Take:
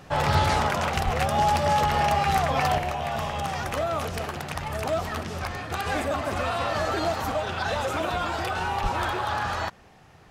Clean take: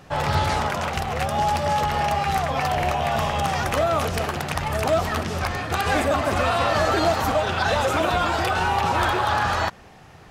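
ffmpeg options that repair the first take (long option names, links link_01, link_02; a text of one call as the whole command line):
ffmpeg -i in.wav -filter_complex "[0:a]asplit=3[link_01][link_02][link_03];[link_01]afade=type=out:start_time=1.04:duration=0.02[link_04];[link_02]highpass=frequency=140:width=0.5412,highpass=frequency=140:width=1.3066,afade=type=in:start_time=1.04:duration=0.02,afade=type=out:start_time=1.16:duration=0.02[link_05];[link_03]afade=type=in:start_time=1.16:duration=0.02[link_06];[link_04][link_05][link_06]amix=inputs=3:normalize=0,asplit=3[link_07][link_08][link_09];[link_07]afade=type=out:start_time=8.82:duration=0.02[link_10];[link_08]highpass=frequency=140:width=0.5412,highpass=frequency=140:width=1.3066,afade=type=in:start_time=8.82:duration=0.02,afade=type=out:start_time=8.94:duration=0.02[link_11];[link_09]afade=type=in:start_time=8.94:duration=0.02[link_12];[link_10][link_11][link_12]amix=inputs=3:normalize=0,asetnsamples=nb_out_samples=441:pad=0,asendcmd='2.78 volume volume 6dB',volume=0dB" out.wav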